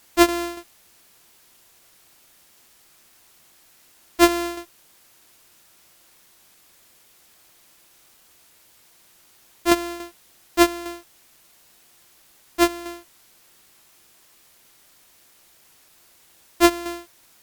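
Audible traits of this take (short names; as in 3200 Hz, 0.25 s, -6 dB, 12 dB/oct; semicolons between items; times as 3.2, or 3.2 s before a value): a buzz of ramps at a fixed pitch in blocks of 128 samples; tremolo saw down 3.5 Hz, depth 55%; a quantiser's noise floor 10-bit, dither triangular; Opus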